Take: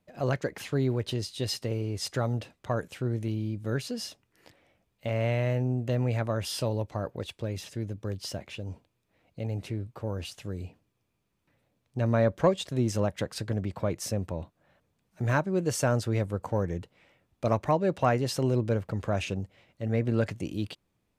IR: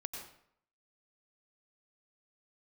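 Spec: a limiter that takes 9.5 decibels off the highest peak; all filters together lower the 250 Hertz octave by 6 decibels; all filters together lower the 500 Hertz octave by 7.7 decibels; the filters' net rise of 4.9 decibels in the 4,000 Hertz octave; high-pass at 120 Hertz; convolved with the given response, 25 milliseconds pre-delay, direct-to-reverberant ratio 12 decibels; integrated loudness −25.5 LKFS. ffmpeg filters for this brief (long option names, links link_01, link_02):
-filter_complex "[0:a]highpass=120,equalizer=frequency=250:width_type=o:gain=-5,equalizer=frequency=500:width_type=o:gain=-8.5,equalizer=frequency=4000:width_type=o:gain=6.5,alimiter=limit=-21.5dB:level=0:latency=1,asplit=2[link_01][link_02];[1:a]atrim=start_sample=2205,adelay=25[link_03];[link_02][link_03]afir=irnorm=-1:irlink=0,volume=-11dB[link_04];[link_01][link_04]amix=inputs=2:normalize=0,volume=9.5dB"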